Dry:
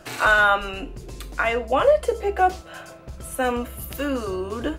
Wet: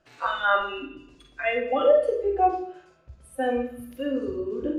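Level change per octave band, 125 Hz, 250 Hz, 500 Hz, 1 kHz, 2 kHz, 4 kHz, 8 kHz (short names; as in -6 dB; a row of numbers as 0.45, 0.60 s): under -10 dB, -1.0 dB, -1.0 dB, -3.5 dB, -9.0 dB, -5.5 dB, under -15 dB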